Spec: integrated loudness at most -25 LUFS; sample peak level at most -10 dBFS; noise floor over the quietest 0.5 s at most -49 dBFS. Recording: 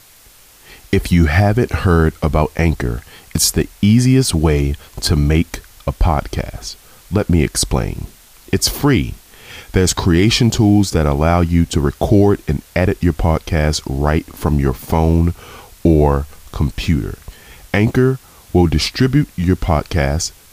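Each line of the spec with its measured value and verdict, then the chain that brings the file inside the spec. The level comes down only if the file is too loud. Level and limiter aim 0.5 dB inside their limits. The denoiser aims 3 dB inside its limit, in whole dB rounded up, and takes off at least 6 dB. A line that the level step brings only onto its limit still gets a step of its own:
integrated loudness -16.0 LUFS: fail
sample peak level -2.0 dBFS: fail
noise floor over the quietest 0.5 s -45 dBFS: fail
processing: trim -9.5 dB

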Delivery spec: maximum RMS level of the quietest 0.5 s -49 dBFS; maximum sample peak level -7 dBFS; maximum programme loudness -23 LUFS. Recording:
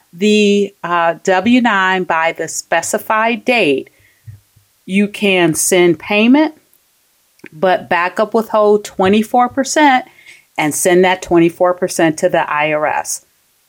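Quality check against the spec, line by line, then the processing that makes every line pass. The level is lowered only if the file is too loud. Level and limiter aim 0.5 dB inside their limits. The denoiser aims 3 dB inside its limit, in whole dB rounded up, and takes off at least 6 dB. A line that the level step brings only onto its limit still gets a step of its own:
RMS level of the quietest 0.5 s -57 dBFS: pass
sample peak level -2.0 dBFS: fail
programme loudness -13.5 LUFS: fail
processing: trim -10 dB

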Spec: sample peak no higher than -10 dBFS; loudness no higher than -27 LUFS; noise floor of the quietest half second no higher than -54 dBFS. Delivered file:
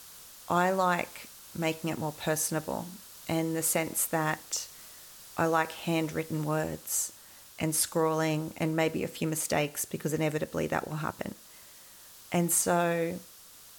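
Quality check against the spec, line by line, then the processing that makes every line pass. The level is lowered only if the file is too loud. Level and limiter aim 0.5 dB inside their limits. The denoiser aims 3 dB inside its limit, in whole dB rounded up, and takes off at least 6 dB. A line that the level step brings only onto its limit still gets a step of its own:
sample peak -12.5 dBFS: pass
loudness -30.0 LUFS: pass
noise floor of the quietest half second -52 dBFS: fail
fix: noise reduction 6 dB, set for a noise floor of -52 dBFS

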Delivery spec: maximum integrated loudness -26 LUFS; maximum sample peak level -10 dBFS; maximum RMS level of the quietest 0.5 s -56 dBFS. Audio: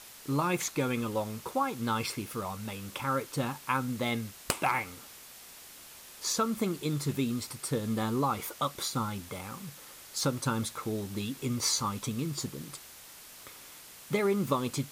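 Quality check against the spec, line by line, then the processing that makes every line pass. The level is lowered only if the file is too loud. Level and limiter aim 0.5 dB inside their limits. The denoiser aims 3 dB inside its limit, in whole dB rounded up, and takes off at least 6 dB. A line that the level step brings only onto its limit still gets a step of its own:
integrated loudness -32.5 LUFS: pass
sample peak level -14.5 dBFS: pass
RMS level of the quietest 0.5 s -50 dBFS: fail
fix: noise reduction 9 dB, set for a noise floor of -50 dBFS

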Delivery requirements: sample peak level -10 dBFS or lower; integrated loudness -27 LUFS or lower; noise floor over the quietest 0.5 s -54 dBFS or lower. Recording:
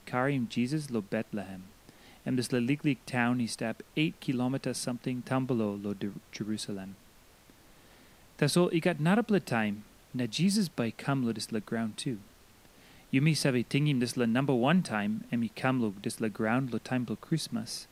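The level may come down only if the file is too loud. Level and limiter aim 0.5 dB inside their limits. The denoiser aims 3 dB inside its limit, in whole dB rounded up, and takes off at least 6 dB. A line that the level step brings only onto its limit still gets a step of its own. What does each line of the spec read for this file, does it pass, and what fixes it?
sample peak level -11.0 dBFS: pass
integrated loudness -31.0 LUFS: pass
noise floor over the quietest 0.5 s -58 dBFS: pass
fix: none needed

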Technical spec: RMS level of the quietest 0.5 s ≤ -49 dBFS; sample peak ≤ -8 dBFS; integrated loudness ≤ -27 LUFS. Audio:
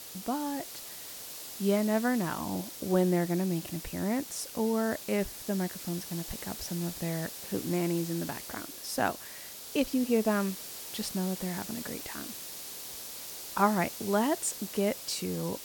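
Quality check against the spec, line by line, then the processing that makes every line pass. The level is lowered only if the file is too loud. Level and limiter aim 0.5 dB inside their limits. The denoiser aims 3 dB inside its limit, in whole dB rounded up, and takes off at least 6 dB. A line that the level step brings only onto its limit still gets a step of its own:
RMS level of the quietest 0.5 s -45 dBFS: fail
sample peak -12.0 dBFS: pass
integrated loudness -32.0 LUFS: pass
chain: noise reduction 7 dB, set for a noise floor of -45 dBFS

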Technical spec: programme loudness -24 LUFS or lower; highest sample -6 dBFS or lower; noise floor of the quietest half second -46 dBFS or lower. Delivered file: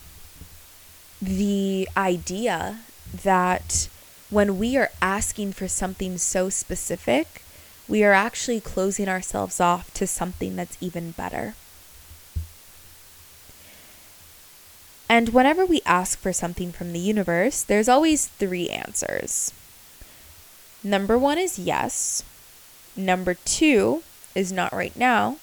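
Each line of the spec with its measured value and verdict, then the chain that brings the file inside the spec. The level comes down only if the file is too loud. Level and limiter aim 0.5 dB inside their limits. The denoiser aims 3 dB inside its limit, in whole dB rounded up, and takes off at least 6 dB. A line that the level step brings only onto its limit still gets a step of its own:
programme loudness -23.0 LUFS: fail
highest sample -4.0 dBFS: fail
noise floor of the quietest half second -48 dBFS: pass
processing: trim -1.5 dB; peak limiter -6.5 dBFS

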